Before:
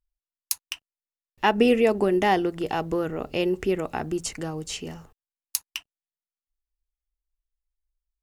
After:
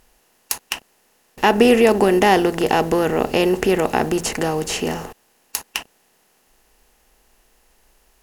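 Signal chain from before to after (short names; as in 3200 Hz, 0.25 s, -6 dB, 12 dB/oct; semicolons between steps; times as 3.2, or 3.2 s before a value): per-bin compression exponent 0.6; 2.7–3.31 requantised 12-bit, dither none; maximiser +5.5 dB; gain -1 dB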